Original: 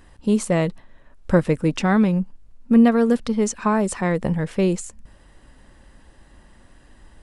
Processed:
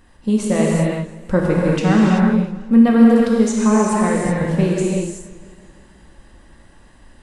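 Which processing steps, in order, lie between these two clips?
non-linear reverb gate 0.41 s flat, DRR -4 dB; warbling echo 0.165 s, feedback 64%, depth 100 cents, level -19.5 dB; gain -2 dB

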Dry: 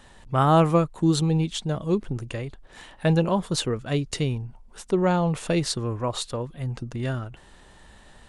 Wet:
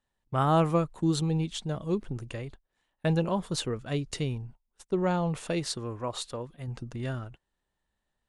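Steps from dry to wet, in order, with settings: gate -39 dBFS, range -26 dB; 5.4–6.68 low shelf 130 Hz -7 dB; gain -5.5 dB

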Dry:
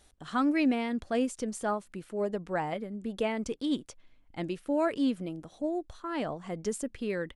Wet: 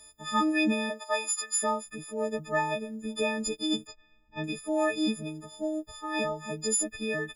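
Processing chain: frequency quantiser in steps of 6 st; 0.89–1.62 resonant high-pass 610 Hz -> 1600 Hz, resonance Q 4.9; 3.87–4.44 air absorption 180 m

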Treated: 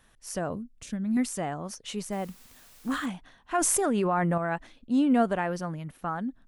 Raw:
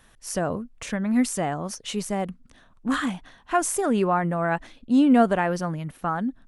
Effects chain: 0.54–1.17 graphic EQ 250/500/1000/2000 Hz +4/-8/-10/-9 dB; 2.11–3.05 added noise white -50 dBFS; 3.58–4.38 fast leveller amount 100%; gain -5.5 dB

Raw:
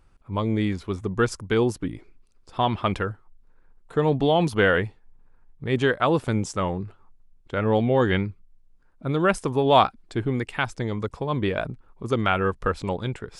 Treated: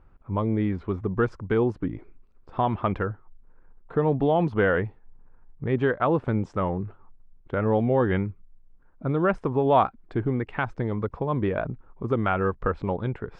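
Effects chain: LPF 1600 Hz 12 dB/oct; in parallel at +2 dB: compressor, threshold -29 dBFS, peak gain reduction 16 dB; on the sum: gain -4 dB

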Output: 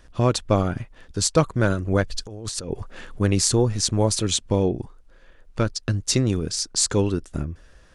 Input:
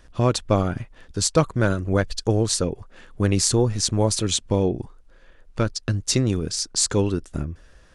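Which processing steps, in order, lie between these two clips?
2.1–3.21 negative-ratio compressor -31 dBFS, ratio -1

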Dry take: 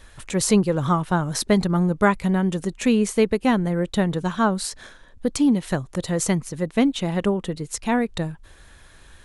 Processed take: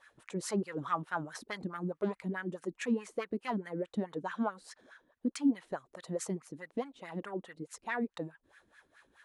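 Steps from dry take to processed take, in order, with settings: sine folder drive 5 dB, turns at -5 dBFS; wah 4.7 Hz 250–1800 Hz, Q 3.1; pre-emphasis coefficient 0.8

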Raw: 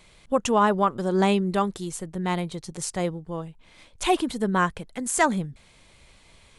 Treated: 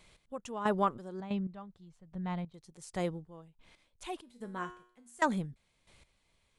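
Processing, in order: 1.2–2.54 EQ curve 170 Hz 0 dB, 380 Hz -12 dB, 620 Hz -4 dB, 4500 Hz -11 dB, 9400 Hz -25 dB; step gate "x...xx..x....x" 92 bpm -12 dB; 4.21–5.22 resonator 120 Hz, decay 0.53 s, harmonics all, mix 80%; gain -7 dB

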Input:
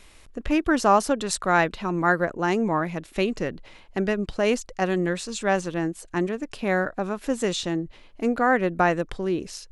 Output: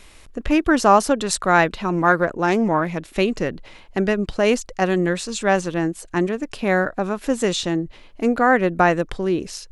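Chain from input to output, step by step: 1.92–3.14 Doppler distortion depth 0.16 ms; gain +4.5 dB

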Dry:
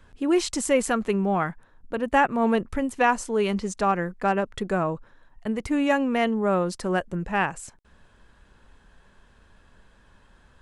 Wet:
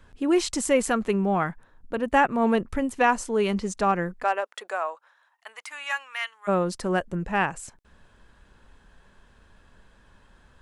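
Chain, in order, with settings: 4.22–6.47 HPF 480 Hz -> 1400 Hz 24 dB/oct

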